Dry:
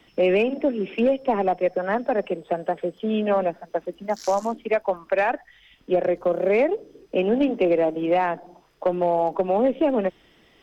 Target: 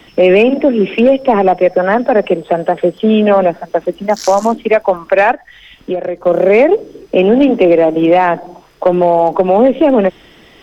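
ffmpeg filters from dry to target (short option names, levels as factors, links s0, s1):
-filter_complex "[0:a]asplit=3[s0][s1][s2];[s0]afade=t=out:st=5.32:d=0.02[s3];[s1]acompressor=threshold=0.0251:ratio=4,afade=t=in:st=5.32:d=0.02,afade=t=out:st=6.26:d=0.02[s4];[s2]afade=t=in:st=6.26:d=0.02[s5];[s3][s4][s5]amix=inputs=3:normalize=0,alimiter=level_in=5.96:limit=0.891:release=50:level=0:latency=1,volume=0.891"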